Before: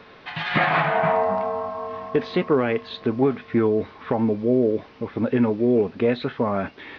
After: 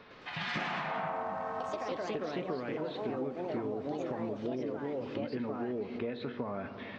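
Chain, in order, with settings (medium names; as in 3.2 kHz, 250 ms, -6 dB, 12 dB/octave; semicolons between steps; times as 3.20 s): ever faster or slower copies 108 ms, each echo +3 st, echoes 3; on a send at -11.5 dB: reverberation RT60 2.2 s, pre-delay 3 ms; on the sum: compression 6:1, threshold -25 dBFS, peak gain reduction 12.5 dB; trim -8 dB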